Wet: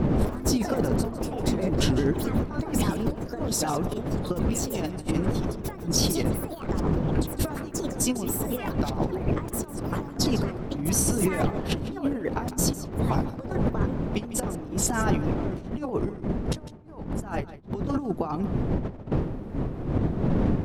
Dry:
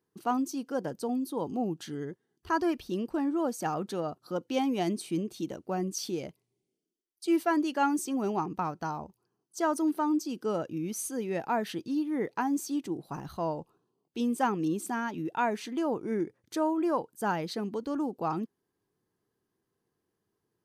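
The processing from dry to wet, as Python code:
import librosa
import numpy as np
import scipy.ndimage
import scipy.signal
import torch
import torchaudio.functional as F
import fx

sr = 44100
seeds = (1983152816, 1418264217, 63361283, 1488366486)

p1 = fx.pitch_ramps(x, sr, semitones=-2.5, every_ms=331)
p2 = fx.dmg_wind(p1, sr, seeds[0], corner_hz=250.0, level_db=-29.0)
p3 = fx.over_compress(p2, sr, threshold_db=-36.0, ratio=-0.5)
p4 = fx.echo_pitch(p3, sr, ms=106, semitones=5, count=2, db_per_echo=-6.0)
p5 = p4 + fx.echo_single(p4, sr, ms=153, db=-15.0, dry=0)
y = F.gain(torch.from_numpy(p5), 7.5).numpy()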